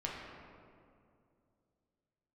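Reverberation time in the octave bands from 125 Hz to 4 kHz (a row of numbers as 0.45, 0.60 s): 3.1, 3.0, 2.7, 2.2, 1.7, 1.2 s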